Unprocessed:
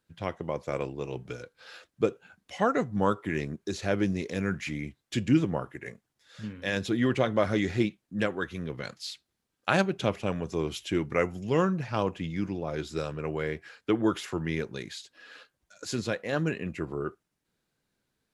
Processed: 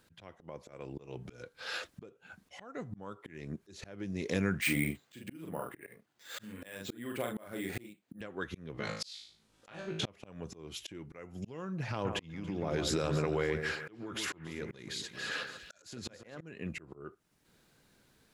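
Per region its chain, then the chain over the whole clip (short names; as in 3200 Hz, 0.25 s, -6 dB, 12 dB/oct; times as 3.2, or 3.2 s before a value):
4.61–8.21 HPF 250 Hz 6 dB/oct + doubler 42 ms -4.5 dB + careless resampling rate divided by 4×, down filtered, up hold
8.73–10.06 LPF 9100 Hz + compressor, threshold -29 dBFS + flutter echo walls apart 3.2 m, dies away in 0.34 s
11.91–16.41 compressor 12:1, threshold -38 dBFS + echo with dull and thin repeats by turns 0.14 s, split 2100 Hz, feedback 59%, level -8.5 dB
whole clip: compressor 16:1, threshold -38 dBFS; auto swell 0.627 s; gain +12.5 dB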